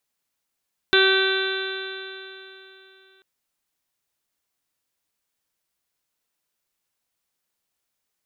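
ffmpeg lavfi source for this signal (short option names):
-f lavfi -i "aevalsrc='0.133*pow(10,-3*t/3.25)*sin(2*PI*382.15*t)+0.0251*pow(10,-3*t/3.25)*sin(2*PI*765.18*t)+0.0376*pow(10,-3*t/3.25)*sin(2*PI*1149.96*t)+0.141*pow(10,-3*t/3.25)*sin(2*PI*1537.38*t)+0.0316*pow(10,-3*t/3.25)*sin(2*PI*1928.3*t)+0.0398*pow(10,-3*t/3.25)*sin(2*PI*2323.55*t)+0.0422*pow(10,-3*t/3.25)*sin(2*PI*2723.98*t)+0.0299*pow(10,-3*t/3.25)*sin(2*PI*3130.39*t)+0.1*pow(10,-3*t/3.25)*sin(2*PI*3543.59*t)+0.0708*pow(10,-3*t/3.25)*sin(2*PI*3964.34*t)':d=2.29:s=44100"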